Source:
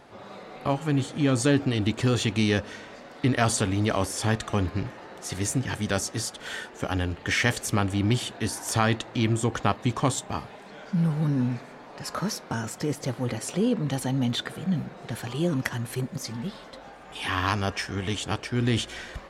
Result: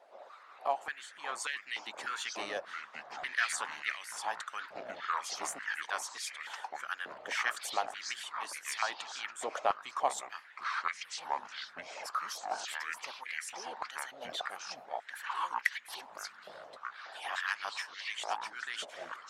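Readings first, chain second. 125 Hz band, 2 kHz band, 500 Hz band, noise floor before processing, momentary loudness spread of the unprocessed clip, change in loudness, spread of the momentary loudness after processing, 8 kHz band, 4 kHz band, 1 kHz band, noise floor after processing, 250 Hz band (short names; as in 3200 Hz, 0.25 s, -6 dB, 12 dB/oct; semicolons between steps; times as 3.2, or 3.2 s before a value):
under -40 dB, -4.0 dB, -13.0 dB, -46 dBFS, 12 LU, -10.5 dB, 10 LU, -9.0 dB, -8.0 dB, -3.5 dB, -55 dBFS, -32.5 dB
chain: echoes that change speed 0.311 s, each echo -6 st, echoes 2; harmonic-percussive split harmonic -15 dB; stepped high-pass 3.4 Hz 620–2000 Hz; gain -9 dB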